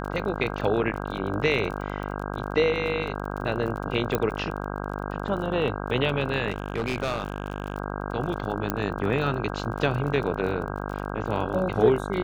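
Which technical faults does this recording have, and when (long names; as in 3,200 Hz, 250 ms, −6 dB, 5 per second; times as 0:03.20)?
mains buzz 50 Hz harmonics 32 −32 dBFS
surface crackle 27 per second −33 dBFS
0:04.15: click −10 dBFS
0:06.50–0:07.76: clipping −22 dBFS
0:08.70: click −10 dBFS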